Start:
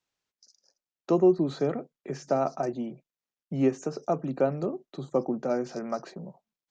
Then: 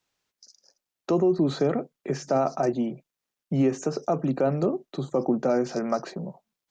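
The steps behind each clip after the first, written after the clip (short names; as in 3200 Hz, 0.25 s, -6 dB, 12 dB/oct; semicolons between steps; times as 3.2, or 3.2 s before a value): limiter -20.5 dBFS, peak gain reduction 9 dB; gain +6.5 dB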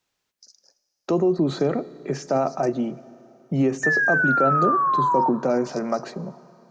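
painted sound fall, 3.83–5.29, 900–1800 Hz -22 dBFS; Schroeder reverb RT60 3.1 s, combs from 29 ms, DRR 18 dB; gain +1.5 dB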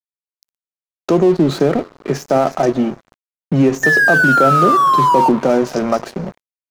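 in parallel at -2 dB: limiter -19.5 dBFS, peak gain reduction 10.5 dB; on the sum: crossover distortion -33.5 dBFS; gain +6 dB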